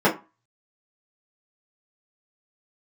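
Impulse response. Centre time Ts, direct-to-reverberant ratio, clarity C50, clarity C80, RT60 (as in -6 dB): 17 ms, -8.0 dB, 13.0 dB, 19.5 dB, 0.30 s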